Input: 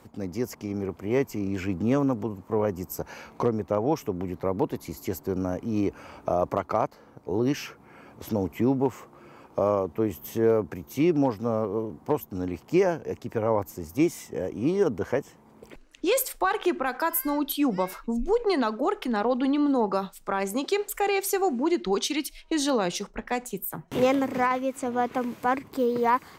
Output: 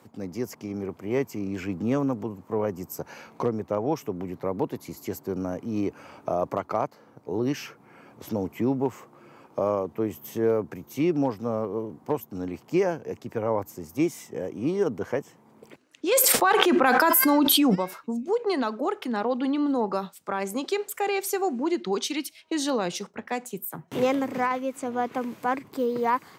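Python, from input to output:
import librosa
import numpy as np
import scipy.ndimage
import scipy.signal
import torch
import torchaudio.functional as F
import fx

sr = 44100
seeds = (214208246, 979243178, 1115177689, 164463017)

y = scipy.signal.sosfilt(scipy.signal.butter(4, 98.0, 'highpass', fs=sr, output='sos'), x)
y = fx.env_flatten(y, sr, amount_pct=100, at=(16.11, 17.74), fade=0.02)
y = F.gain(torch.from_numpy(y), -1.5).numpy()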